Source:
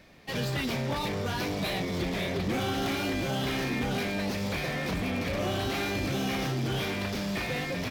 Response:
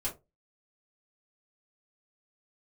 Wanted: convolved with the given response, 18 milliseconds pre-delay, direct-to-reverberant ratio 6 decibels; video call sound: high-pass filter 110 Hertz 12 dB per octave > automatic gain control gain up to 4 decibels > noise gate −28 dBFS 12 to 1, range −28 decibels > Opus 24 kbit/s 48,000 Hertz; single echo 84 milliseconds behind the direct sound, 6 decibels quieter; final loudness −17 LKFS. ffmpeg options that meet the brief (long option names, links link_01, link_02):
-filter_complex "[0:a]aecho=1:1:84:0.501,asplit=2[link_01][link_02];[1:a]atrim=start_sample=2205,adelay=18[link_03];[link_02][link_03]afir=irnorm=-1:irlink=0,volume=-9dB[link_04];[link_01][link_04]amix=inputs=2:normalize=0,highpass=110,dynaudnorm=maxgain=4dB,agate=range=-28dB:threshold=-28dB:ratio=12,volume=11.5dB" -ar 48000 -c:a libopus -b:a 24k